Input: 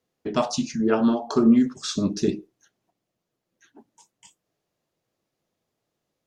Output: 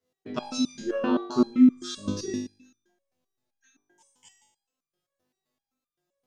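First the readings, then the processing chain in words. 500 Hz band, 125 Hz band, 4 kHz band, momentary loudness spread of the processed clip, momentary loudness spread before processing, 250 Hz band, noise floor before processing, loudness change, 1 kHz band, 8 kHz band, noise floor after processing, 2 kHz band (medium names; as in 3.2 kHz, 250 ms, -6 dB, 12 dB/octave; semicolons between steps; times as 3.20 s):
-6.0 dB, -8.5 dB, -3.5 dB, 16 LU, 9 LU, -2.5 dB, -82 dBFS, -3.0 dB, -6.0 dB, -5.0 dB, under -85 dBFS, -4.0 dB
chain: flutter echo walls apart 3.4 m, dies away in 0.72 s; resonator arpeggio 7.7 Hz 84–1200 Hz; trim +4 dB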